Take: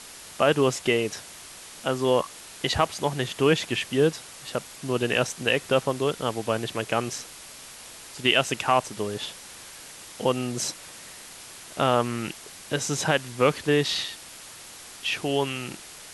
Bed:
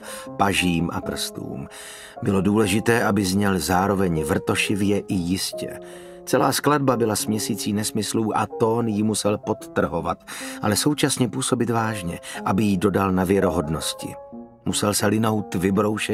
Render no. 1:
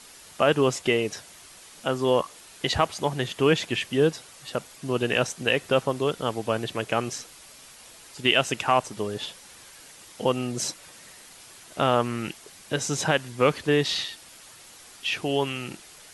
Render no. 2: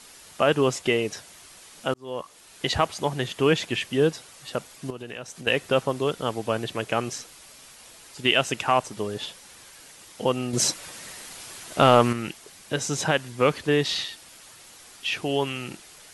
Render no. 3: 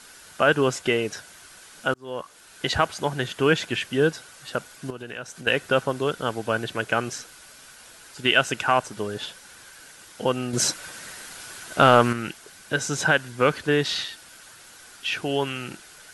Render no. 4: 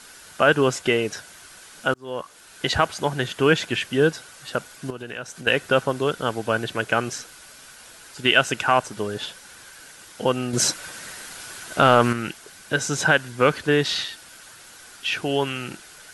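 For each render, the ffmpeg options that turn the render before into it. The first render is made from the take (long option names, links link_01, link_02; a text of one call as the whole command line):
ffmpeg -i in.wav -af "afftdn=noise_reduction=6:noise_floor=-44" out.wav
ffmpeg -i in.wav -filter_complex "[0:a]asettb=1/sr,asplit=3[link_01][link_02][link_03];[link_01]atrim=end=4.904[link_04];[link_02]atrim=start=4.9:end=5.47,asetpts=PTS-STARTPTS,afade=type=in:duration=0.004:curve=qsin,afade=type=out:start_time=0.566:duration=0.004:curve=qsin,acompressor=threshold=-37dB:ratio=3:attack=3.2:release=140:knee=1:detection=peak[link_05];[link_03]atrim=start=5.466[link_06];[link_04][link_05]acrossfade=duration=0.004:curve1=hsin:curve2=qsin[link_07];[link_07][link_06]acrossfade=duration=0.004:curve1=qsin:curve2=hsin,asettb=1/sr,asplit=3[link_08][link_09][link_10];[link_08]atrim=end=10.534[link_11];[link_09]atrim=start=10.53:end=12.13,asetpts=PTS-STARTPTS,afade=type=in:duration=0.004:curve=qsin,afade=type=out:start_time=1.596:duration=0.004:curve=qsin,acontrast=74[link_12];[link_10]atrim=start=12.126[link_13];[link_11][link_12]acrossfade=duration=0.004:curve1=hsin:curve2=qsin[link_14];[link_14][link_13]acrossfade=duration=0.004:curve1=qsin:curve2=hsin,asplit=2[link_15][link_16];[link_15]atrim=end=1.94,asetpts=PTS-STARTPTS,afade=type=out:start_time=1.936:duration=0.004:curve=hsin[link_17];[link_16]atrim=start=1.94,asetpts=PTS-STARTPTS,afade=type=in:duration=0.71[link_18];[link_17][link_18]concat=n=2:v=0:a=1" out.wav
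ffmpeg -i in.wav -af "equalizer=frequency=1500:width_type=o:width=0.22:gain=12" out.wav
ffmpeg -i in.wav -af "volume=2dB,alimiter=limit=-3dB:level=0:latency=1" out.wav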